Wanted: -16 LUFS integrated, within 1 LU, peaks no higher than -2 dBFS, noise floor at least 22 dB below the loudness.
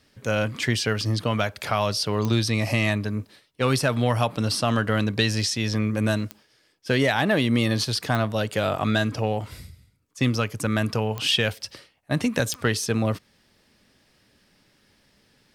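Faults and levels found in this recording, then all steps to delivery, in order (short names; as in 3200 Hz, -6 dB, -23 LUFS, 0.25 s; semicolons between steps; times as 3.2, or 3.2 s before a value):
clicks 5; loudness -24.0 LUFS; peak -8.0 dBFS; loudness target -16.0 LUFS
-> de-click; gain +8 dB; limiter -2 dBFS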